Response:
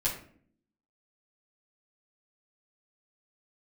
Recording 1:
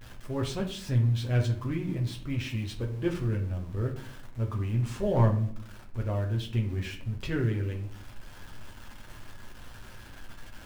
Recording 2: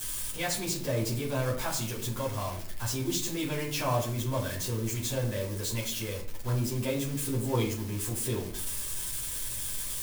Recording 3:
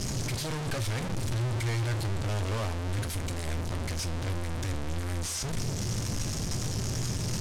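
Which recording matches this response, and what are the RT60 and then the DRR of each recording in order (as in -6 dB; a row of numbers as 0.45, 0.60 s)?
2; 0.55, 0.55, 0.55 s; 0.0, -7.0, 9.0 dB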